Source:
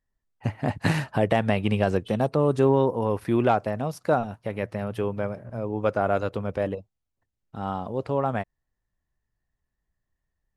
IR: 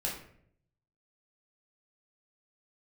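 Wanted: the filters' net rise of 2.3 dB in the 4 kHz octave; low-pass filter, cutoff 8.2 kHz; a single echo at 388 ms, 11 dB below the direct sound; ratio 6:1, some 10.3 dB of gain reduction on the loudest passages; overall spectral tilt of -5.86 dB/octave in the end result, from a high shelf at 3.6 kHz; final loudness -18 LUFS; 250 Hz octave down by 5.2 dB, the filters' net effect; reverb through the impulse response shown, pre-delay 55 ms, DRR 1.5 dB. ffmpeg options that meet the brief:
-filter_complex "[0:a]lowpass=8200,equalizer=f=250:t=o:g=-7,highshelf=f=3600:g=-5.5,equalizer=f=4000:t=o:g=7,acompressor=threshold=0.0355:ratio=6,aecho=1:1:388:0.282,asplit=2[s0][s1];[1:a]atrim=start_sample=2205,adelay=55[s2];[s1][s2]afir=irnorm=-1:irlink=0,volume=0.531[s3];[s0][s3]amix=inputs=2:normalize=0,volume=4.73"

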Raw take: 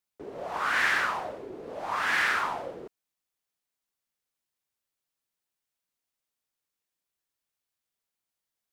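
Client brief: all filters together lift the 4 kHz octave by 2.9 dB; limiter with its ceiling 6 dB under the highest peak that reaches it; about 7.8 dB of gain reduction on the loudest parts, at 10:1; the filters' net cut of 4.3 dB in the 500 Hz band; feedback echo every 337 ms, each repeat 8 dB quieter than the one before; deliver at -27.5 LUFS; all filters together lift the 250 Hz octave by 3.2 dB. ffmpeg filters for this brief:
-af "equalizer=f=250:t=o:g=7,equalizer=f=500:t=o:g=-7.5,equalizer=f=4000:t=o:g=4,acompressor=threshold=0.0355:ratio=10,alimiter=level_in=1.33:limit=0.0631:level=0:latency=1,volume=0.75,aecho=1:1:337|674|1011|1348|1685:0.398|0.159|0.0637|0.0255|0.0102,volume=2.82"

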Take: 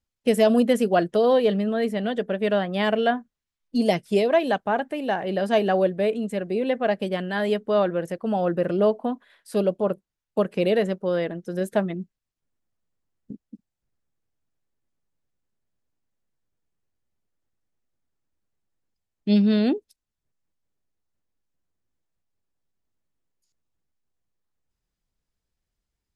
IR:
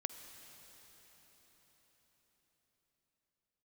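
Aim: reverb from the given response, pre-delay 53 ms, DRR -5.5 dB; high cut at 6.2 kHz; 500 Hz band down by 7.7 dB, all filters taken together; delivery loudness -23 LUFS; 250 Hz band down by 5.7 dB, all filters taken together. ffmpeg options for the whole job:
-filter_complex "[0:a]lowpass=6200,equalizer=f=250:t=o:g=-5.5,equalizer=f=500:t=o:g=-8.5,asplit=2[s0][s1];[1:a]atrim=start_sample=2205,adelay=53[s2];[s1][s2]afir=irnorm=-1:irlink=0,volume=2.11[s3];[s0][s3]amix=inputs=2:normalize=0"

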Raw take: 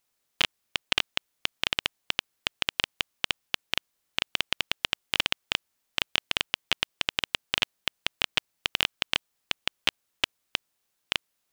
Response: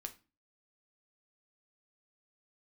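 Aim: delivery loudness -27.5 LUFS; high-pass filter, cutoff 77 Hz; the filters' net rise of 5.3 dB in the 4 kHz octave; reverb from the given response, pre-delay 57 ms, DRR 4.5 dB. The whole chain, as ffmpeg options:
-filter_complex "[0:a]highpass=77,equalizer=f=4000:t=o:g=7.5,asplit=2[s0][s1];[1:a]atrim=start_sample=2205,adelay=57[s2];[s1][s2]afir=irnorm=-1:irlink=0,volume=0.891[s3];[s0][s3]amix=inputs=2:normalize=0,volume=0.668"

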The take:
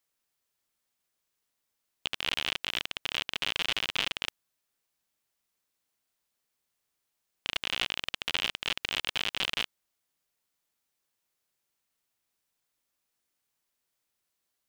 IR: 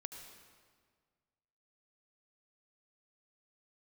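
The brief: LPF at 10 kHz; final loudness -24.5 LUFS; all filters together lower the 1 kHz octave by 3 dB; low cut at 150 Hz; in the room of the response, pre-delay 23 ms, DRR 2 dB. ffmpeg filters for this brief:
-filter_complex "[0:a]highpass=150,lowpass=10000,equalizer=f=1000:t=o:g=-4,asplit=2[s0][s1];[1:a]atrim=start_sample=2205,adelay=23[s2];[s1][s2]afir=irnorm=-1:irlink=0,volume=1.19[s3];[s0][s3]amix=inputs=2:normalize=0,volume=1.88"

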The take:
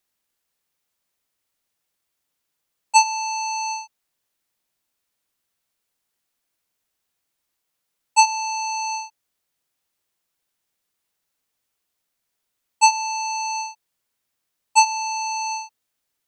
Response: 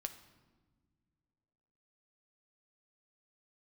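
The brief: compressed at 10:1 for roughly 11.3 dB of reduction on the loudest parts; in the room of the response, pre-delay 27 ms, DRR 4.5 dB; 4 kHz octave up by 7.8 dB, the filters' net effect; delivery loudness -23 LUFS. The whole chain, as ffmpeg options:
-filter_complex "[0:a]equalizer=f=4000:t=o:g=8.5,acompressor=threshold=0.126:ratio=10,asplit=2[s0][s1];[1:a]atrim=start_sample=2205,adelay=27[s2];[s1][s2]afir=irnorm=-1:irlink=0,volume=0.75[s3];[s0][s3]amix=inputs=2:normalize=0,volume=0.944"

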